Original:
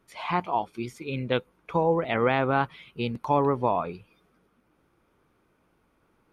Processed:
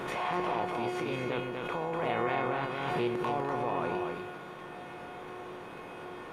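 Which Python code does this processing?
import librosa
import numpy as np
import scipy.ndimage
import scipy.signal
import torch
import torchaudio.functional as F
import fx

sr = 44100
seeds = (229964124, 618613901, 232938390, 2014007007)

p1 = fx.bin_compress(x, sr, power=0.4)
p2 = fx.dynamic_eq(p1, sr, hz=3800.0, q=2.8, threshold_db=-48.0, ratio=4.0, max_db=-4)
p3 = fx.over_compress(p2, sr, threshold_db=-22.0, ratio=-0.5)
p4 = p2 + (p3 * librosa.db_to_amplitude(0.5))
p5 = fx.comb_fb(p4, sr, f0_hz=360.0, decay_s=0.77, harmonics='all', damping=0.0, mix_pct=90)
p6 = p5 + fx.echo_single(p5, sr, ms=245, db=-4.0, dry=0)
y = fx.pre_swell(p6, sr, db_per_s=26.0)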